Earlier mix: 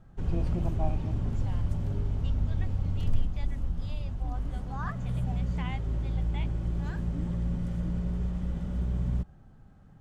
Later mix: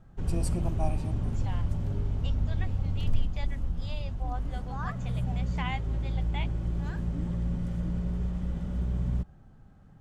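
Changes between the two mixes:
first voice: remove air absorption 350 m; second voice +6.0 dB

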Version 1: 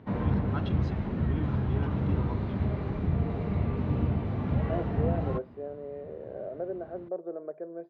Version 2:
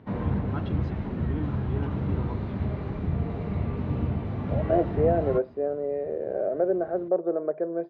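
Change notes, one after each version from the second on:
first voice: add tilt -2.5 dB/oct; second voice +10.5 dB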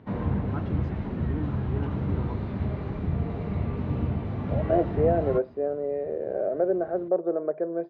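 first voice: add bell 3500 Hz -11.5 dB 0.95 oct

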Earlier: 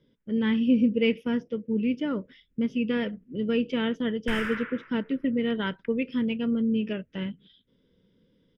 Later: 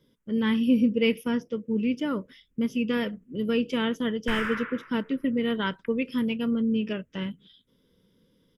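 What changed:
speech: remove LPF 3500 Hz 12 dB/oct; master: add bell 1100 Hz +6 dB 0.58 oct

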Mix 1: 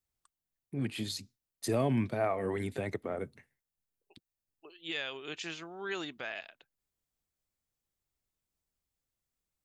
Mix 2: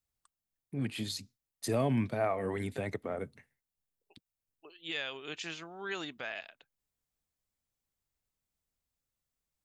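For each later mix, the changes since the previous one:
master: add bell 360 Hz -4 dB 0.27 oct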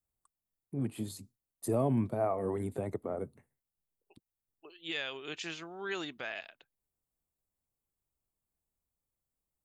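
first voice: add band shelf 3100 Hz -13 dB 2.3 oct; master: add bell 360 Hz +4 dB 0.27 oct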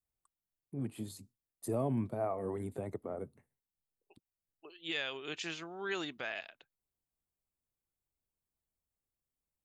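first voice -4.0 dB

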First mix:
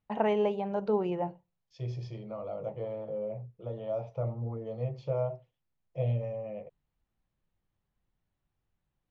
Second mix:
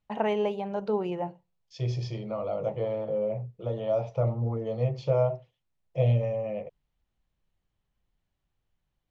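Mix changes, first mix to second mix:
second voice +6.5 dB; master: add high shelf 3000 Hz +7 dB

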